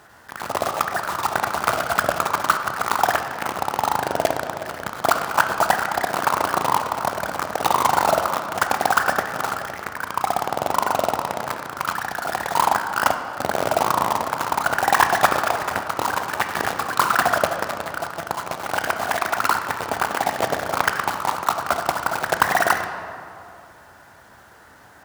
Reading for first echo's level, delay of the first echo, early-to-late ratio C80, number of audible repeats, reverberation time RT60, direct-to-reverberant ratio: no echo audible, no echo audible, 8.5 dB, no echo audible, 2.5 s, 6.0 dB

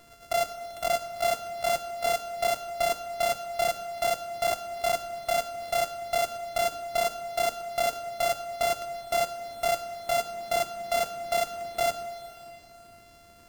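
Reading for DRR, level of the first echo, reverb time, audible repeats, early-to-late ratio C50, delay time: 10.5 dB, no echo audible, 2.8 s, no echo audible, 11.5 dB, no echo audible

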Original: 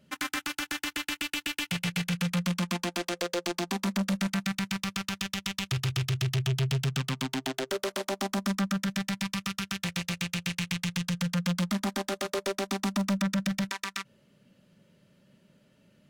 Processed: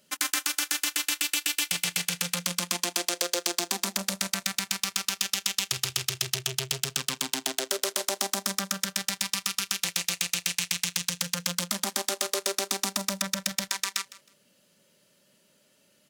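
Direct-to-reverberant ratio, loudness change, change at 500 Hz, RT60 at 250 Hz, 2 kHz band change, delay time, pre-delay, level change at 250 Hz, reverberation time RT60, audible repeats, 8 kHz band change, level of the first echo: no reverb audible, +3.0 dB, −1.5 dB, no reverb audible, +1.5 dB, 158 ms, no reverb audible, −9.0 dB, no reverb audible, 2, +11.5 dB, −18.5 dB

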